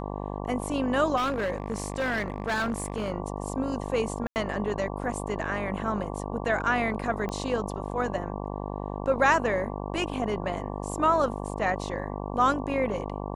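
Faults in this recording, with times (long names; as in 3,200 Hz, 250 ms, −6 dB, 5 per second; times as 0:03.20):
mains buzz 50 Hz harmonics 23 −34 dBFS
0:01.16–0:03.10: clipping −24 dBFS
0:04.27–0:04.36: drop-out 89 ms
0:07.29: click −20 dBFS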